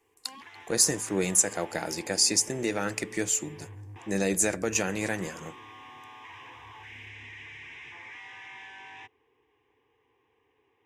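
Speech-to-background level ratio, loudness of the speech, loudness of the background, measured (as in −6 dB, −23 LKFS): 19.5 dB, −26.5 LKFS, −46.0 LKFS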